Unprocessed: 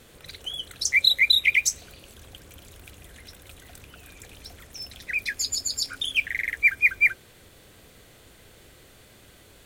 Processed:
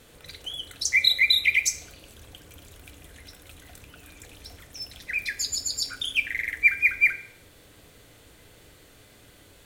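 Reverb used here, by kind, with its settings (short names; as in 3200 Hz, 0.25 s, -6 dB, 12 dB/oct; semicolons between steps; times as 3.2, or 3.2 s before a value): FDN reverb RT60 0.62 s, high-frequency decay 0.8×, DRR 8.5 dB; gain -1.5 dB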